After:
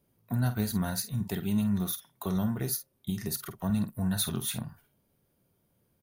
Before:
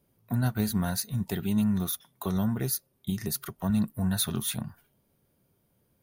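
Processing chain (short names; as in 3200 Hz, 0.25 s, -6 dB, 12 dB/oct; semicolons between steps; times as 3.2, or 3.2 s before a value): doubler 49 ms -11 dB; gain -2 dB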